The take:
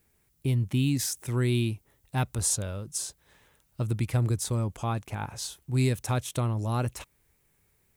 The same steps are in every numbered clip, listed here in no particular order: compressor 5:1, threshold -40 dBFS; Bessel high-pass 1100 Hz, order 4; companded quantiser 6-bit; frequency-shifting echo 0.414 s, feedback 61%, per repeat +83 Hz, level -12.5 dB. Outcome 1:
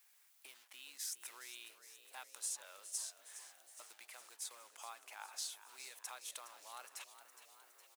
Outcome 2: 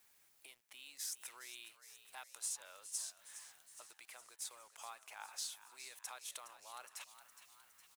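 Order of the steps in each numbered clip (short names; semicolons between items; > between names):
compressor > companded quantiser > frequency-shifting echo > Bessel high-pass; compressor > Bessel high-pass > companded quantiser > frequency-shifting echo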